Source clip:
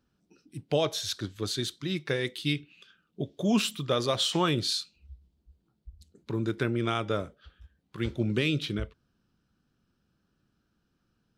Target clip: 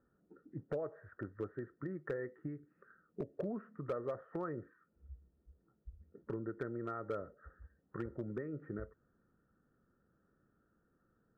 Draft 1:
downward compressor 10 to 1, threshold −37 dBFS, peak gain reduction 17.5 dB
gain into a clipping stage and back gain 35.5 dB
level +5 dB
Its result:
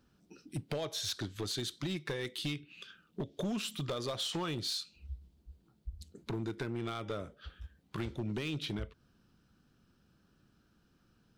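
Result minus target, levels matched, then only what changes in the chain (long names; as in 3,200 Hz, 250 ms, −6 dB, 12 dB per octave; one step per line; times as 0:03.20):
2,000 Hz band +3.0 dB
add after downward compressor: Chebyshev low-pass with heavy ripple 1,900 Hz, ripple 9 dB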